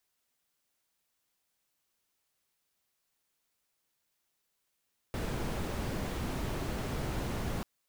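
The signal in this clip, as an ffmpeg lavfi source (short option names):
-f lavfi -i "anoisesrc=c=brown:a=0.0881:d=2.49:r=44100:seed=1"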